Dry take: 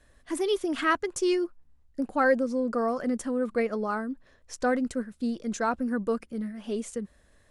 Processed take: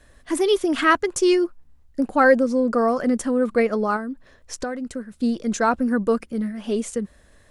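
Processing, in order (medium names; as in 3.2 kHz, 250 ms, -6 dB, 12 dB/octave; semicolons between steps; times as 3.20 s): 3.96–5.13 s: compression 6:1, threshold -34 dBFS, peak gain reduction 12.5 dB; trim +7.5 dB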